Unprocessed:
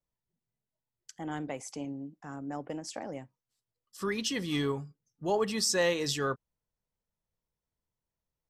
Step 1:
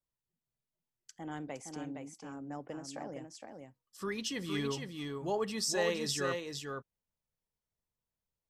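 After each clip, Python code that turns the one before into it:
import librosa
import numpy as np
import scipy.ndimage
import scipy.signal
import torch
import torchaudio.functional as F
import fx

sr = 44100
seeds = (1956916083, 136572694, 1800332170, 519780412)

y = x + 10.0 ** (-5.0 / 20.0) * np.pad(x, (int(464 * sr / 1000.0), 0))[:len(x)]
y = y * 10.0 ** (-5.0 / 20.0)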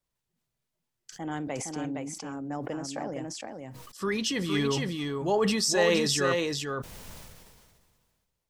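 y = fx.high_shelf(x, sr, hz=11000.0, db=-5.0)
y = fx.sustainer(y, sr, db_per_s=31.0)
y = y * 10.0 ** (7.5 / 20.0)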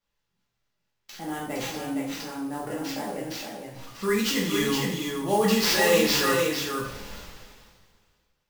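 y = fx.sample_hold(x, sr, seeds[0], rate_hz=10000.0, jitter_pct=20)
y = fx.rev_double_slope(y, sr, seeds[1], early_s=0.57, late_s=2.0, knee_db=-18, drr_db=-6.0)
y = y * 10.0 ** (-3.0 / 20.0)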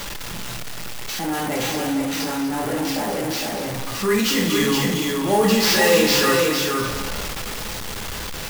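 y = x + 0.5 * 10.0 ** (-27.0 / 20.0) * np.sign(x)
y = y + 10.0 ** (-11.5 / 20.0) * np.pad(y, (int(241 * sr / 1000.0), 0))[:len(y)]
y = y * 10.0 ** (3.0 / 20.0)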